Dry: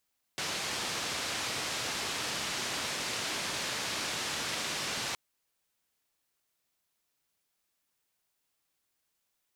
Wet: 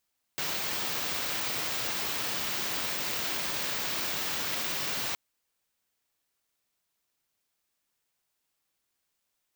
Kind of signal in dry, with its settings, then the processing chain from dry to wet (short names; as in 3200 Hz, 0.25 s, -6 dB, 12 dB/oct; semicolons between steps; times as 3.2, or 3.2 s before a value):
noise band 86–5600 Hz, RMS -35 dBFS 4.77 s
careless resampling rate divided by 2×, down filtered, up zero stuff